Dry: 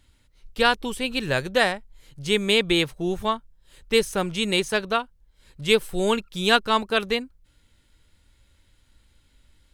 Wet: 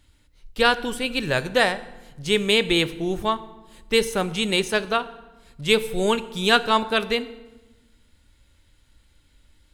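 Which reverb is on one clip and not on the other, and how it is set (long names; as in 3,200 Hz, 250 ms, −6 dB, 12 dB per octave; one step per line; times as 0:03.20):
feedback delay network reverb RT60 1.1 s, low-frequency decay 1.55×, high-frequency decay 0.75×, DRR 13 dB
level +1 dB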